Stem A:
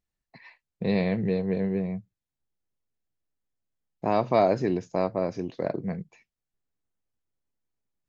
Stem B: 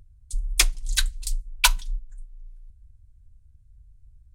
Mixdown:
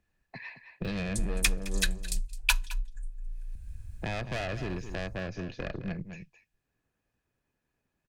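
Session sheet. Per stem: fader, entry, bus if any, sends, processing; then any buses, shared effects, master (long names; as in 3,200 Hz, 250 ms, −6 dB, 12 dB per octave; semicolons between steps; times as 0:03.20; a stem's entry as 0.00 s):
−6.0 dB, 0.00 s, no send, echo send −12 dB, high-shelf EQ 2,700 Hz −10 dB; tube saturation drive 26 dB, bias 0.65
−3.0 dB, 0.85 s, no send, echo send −21 dB, no processing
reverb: not used
echo: single-tap delay 212 ms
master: hollow resonant body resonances 1,700/2,500 Hz, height 13 dB, ringing for 30 ms; multiband upward and downward compressor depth 70%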